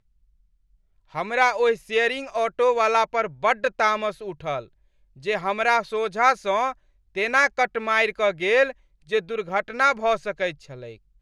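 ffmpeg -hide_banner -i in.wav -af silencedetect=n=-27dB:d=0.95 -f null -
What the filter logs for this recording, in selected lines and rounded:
silence_start: 0.00
silence_end: 1.15 | silence_duration: 1.15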